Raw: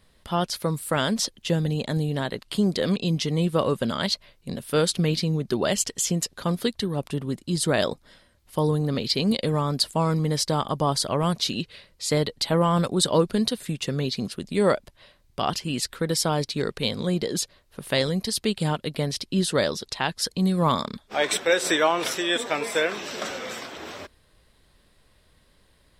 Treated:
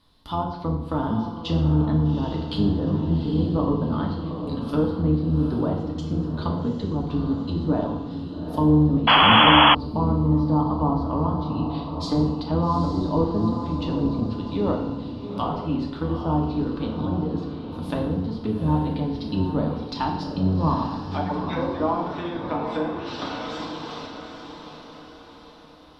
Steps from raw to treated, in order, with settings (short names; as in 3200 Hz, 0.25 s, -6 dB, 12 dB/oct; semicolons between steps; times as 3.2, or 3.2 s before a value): octaver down 1 oct, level -3 dB; 21.21–21.8 dispersion lows, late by 0.11 s, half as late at 1500 Hz; treble ducked by the level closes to 800 Hz, closed at -21 dBFS; on a send: diffused feedback echo 0.813 s, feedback 47%, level -7.5 dB; on the sum: FDN reverb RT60 0.9 s, low-frequency decay 1×, high-frequency decay 0.85×, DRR -0.5 dB; 9.07–9.75 painted sound noise 470–3400 Hz -11 dBFS; ten-band EQ 125 Hz -4 dB, 250 Hz +6 dB, 500 Hz -8 dB, 1000 Hz +9 dB, 2000 Hz -10 dB, 4000 Hz +9 dB, 8000 Hz -11 dB; gain -3.5 dB